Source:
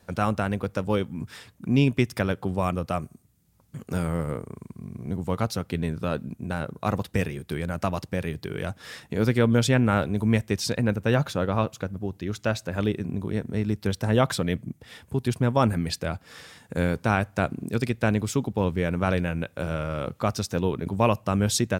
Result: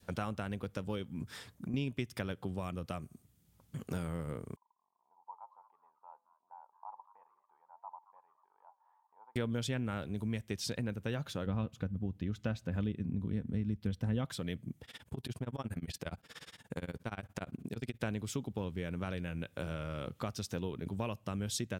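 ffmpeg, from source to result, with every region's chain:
-filter_complex "[0:a]asettb=1/sr,asplit=3[s0][s1][s2];[s0]atrim=end=1.234[s3];[s1]atrim=start=1.23:end=1.74,asetpts=PTS-STARTPTS,afade=t=in:d=0.004:c=qsin,afade=t=out:st=0.506:d=0.004:c=qsin,equalizer=f=2800:t=o:w=0.57:g=-6,acompressor=threshold=0.0251:ratio=3:attack=3.2:release=140:knee=1:detection=peak[s4];[s2]atrim=start=1.736[s5];[s3][s4]acrossfade=d=0.004:c1=hsin:c2=qsin[s6];[s6][s5]acrossfade=d=0.004:c1=qsin:c2=hsin,asettb=1/sr,asplit=3[s7][s8][s9];[s7]atrim=end=4.564[s10];[s8]atrim=start=4.56:end=9.36,asetpts=PTS-STARTPTS,afade=t=in:d=0.004:c=qsin,afade=t=out:st=4.796:d=0.004:c=qsin,flanger=delay=3.9:depth=2:regen=90:speed=1.5:shape=sinusoidal,asuperpass=centerf=900:order=4:qfactor=5.9,asplit=4[s11][s12][s13][s14];[s12]adelay=222,afreqshift=98,volume=0.141[s15];[s13]adelay=444,afreqshift=196,volume=0.0495[s16];[s14]adelay=666,afreqshift=294,volume=0.0174[s17];[s11][s15][s16][s17]amix=inputs=4:normalize=0,atrim=end_sample=211680[s18];[s9]atrim=start=9.356[s19];[s10][s18]acrossfade=d=0.004:c1=hsin:c2=qsin[s20];[s20][s19]acrossfade=d=0.004:c1=qsin:c2=hsin,asettb=1/sr,asplit=3[s21][s22][s23];[s21]atrim=end=11.464[s24];[s22]atrim=start=11.46:end=14.25,asetpts=PTS-STARTPTS,afade=t=in:d=0.004:c=qsin,afade=t=out:st=2.786:d=0.004:c=qsin,bass=f=250:g=11,treble=f=4000:g=-7,aecho=1:1:4:0.3,atrim=end_sample=123039[s25];[s23]atrim=start=14.246[s26];[s24][s25]acrossfade=d=0.004:c1=hsin:c2=qsin[s27];[s27][s26]acrossfade=d=0.004:c1=qsin:c2=hsin,asettb=1/sr,asplit=3[s28][s29][s30];[s28]atrim=end=14.844[s31];[s29]atrim=start=14.84:end=18.01,asetpts=PTS-STARTPTS,afade=t=in:d=0.004:c=qsin,afade=t=out:st=3.166:d=0.004:c=qsin,acompressor=threshold=0.0631:ratio=6:attack=3.2:release=140:knee=1:detection=peak,tremolo=f=17:d=0.97[s32];[s30]atrim=start=18.006[s33];[s31][s32]acrossfade=d=0.004:c1=hsin:c2=qsin[s34];[s34][s33]acrossfade=d=0.004:c1=qsin:c2=hsin,equalizer=f=3200:t=o:w=0.37:g=4.5,acompressor=threshold=0.0251:ratio=3,adynamicequalizer=threshold=0.00447:dfrequency=830:dqfactor=0.85:tfrequency=830:tqfactor=0.85:attack=5:release=100:ratio=0.375:range=2.5:mode=cutabove:tftype=bell,volume=0.668"

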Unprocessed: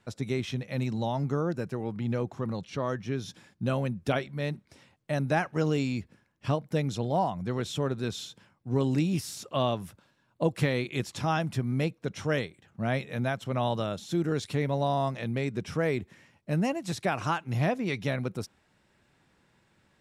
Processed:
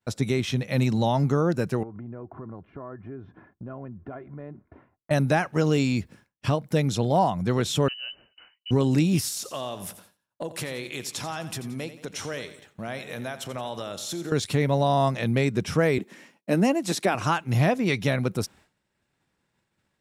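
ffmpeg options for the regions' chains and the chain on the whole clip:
-filter_complex "[0:a]asettb=1/sr,asplit=3[s0][s1][s2];[s0]atrim=end=1.834[s3];[s1]atrim=start=1.83:end=5.11,asetpts=PTS-STARTPTS,afade=t=in:d=0.004:c=qsin,afade=t=out:st=3.276:d=0.004:c=qsin,aecho=1:1:2.9:0.46,atrim=end_sample=144648,acompressor=threshold=0.00562:ratio=4:attack=3.2:release=140:knee=1:detection=peak,lowpass=f=1500:w=0.5412,lowpass=f=1500:w=1.3066[s4];[s2]atrim=start=5.106[s5];[s3][s4]acrossfade=d=0.004:c1=hsin:c2=qsin[s6];[s6][s5]acrossfade=d=0.004:c1=qsin:c2=hsin,asettb=1/sr,asplit=3[s7][s8][s9];[s7]atrim=end=7.884[s10];[s8]atrim=start=7.88:end=8.71,asetpts=PTS-STARTPTS,afade=t=in:d=0.004:c=qsin,afade=t=out:st=0.826:d=0.004:c=qsin,equalizer=f=93:w=1.4:g=4,acompressor=threshold=0.00282:ratio=2:attack=3.2:release=140:knee=1:detection=peak,lowpass=f=2600:t=q:w=0.5098,lowpass=f=2600:t=q:w=0.6013,lowpass=f=2600:t=q:w=0.9,lowpass=f=2600:t=q:w=2.563,afreqshift=-3100[s11];[s9]atrim=start=8.706[s12];[s10][s11]acrossfade=d=0.004:c1=hsin:c2=qsin[s13];[s13][s12]acrossfade=d=0.004:c1=qsin:c2=hsin,asettb=1/sr,asplit=3[s14][s15][s16];[s14]atrim=end=9.284[s17];[s15]atrim=start=9.28:end=14.32,asetpts=PTS-STARTPTS,afade=t=in:d=0.004:c=qsin,afade=t=out:st=5.036:d=0.004:c=qsin,bass=f=250:g=-8,treble=f=4000:g=4,acompressor=threshold=0.01:ratio=3:attack=3.2:release=140:knee=1:detection=peak,aecho=1:1:87|174|261|348|435:0.224|0.11|0.0538|0.0263|0.0129,atrim=end_sample=222264[s18];[s16]atrim=start=14.316[s19];[s17][s18]acrossfade=d=0.004:c1=hsin:c2=qsin[s20];[s20][s19]acrossfade=d=0.004:c1=qsin:c2=hsin,asettb=1/sr,asplit=3[s21][s22][s23];[s21]atrim=end=15.984[s24];[s22]atrim=start=15.98:end=17.15,asetpts=PTS-STARTPTS,afade=t=in:d=0.004:c=qsin,afade=t=out:st=1.166:d=0.004:c=qsin,highpass=f=230:w=0.5412,highpass=f=230:w=1.3066,lowshelf=f=320:g=8.5[s25];[s23]atrim=start=17.146[s26];[s24][s25]acrossfade=d=0.004:c1=hsin:c2=qsin[s27];[s27][s26]acrossfade=d=0.004:c1=qsin:c2=hsin,agate=range=0.0224:threshold=0.00178:ratio=3:detection=peak,highshelf=f=7100:g=6,alimiter=limit=0.112:level=0:latency=1:release=361,volume=2.37"

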